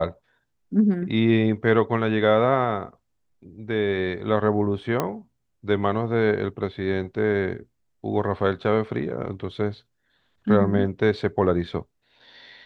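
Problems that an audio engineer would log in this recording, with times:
5 pop -10 dBFS

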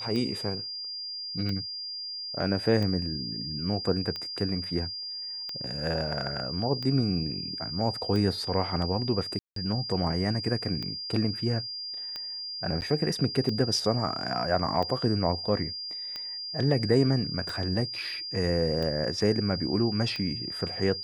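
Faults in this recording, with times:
tick 45 rpm -21 dBFS
tone 4800 Hz -34 dBFS
9.39–9.56 gap 0.173 s
12.81–12.82 gap 9.3 ms

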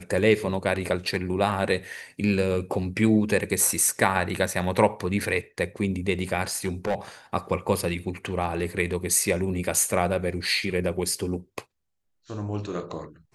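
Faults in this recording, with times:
6.47–6.95 clipped -20.5 dBFS

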